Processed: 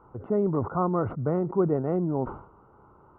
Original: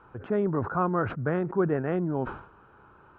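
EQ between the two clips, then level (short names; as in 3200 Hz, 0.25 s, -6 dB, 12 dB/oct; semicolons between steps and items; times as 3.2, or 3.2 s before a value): polynomial smoothing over 65 samples; +1.5 dB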